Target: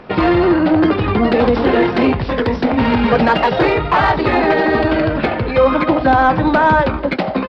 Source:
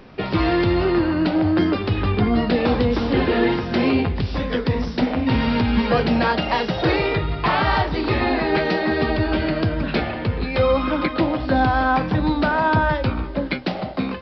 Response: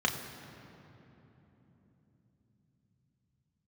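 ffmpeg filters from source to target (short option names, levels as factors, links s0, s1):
-filter_complex "[0:a]atempo=1.9,asplit=2[s0][s1];[s1]highpass=f=720:p=1,volume=3.98,asoftclip=type=tanh:threshold=0.473[s2];[s0][s2]amix=inputs=2:normalize=0,lowpass=f=1100:p=1,volume=0.501,volume=2.11"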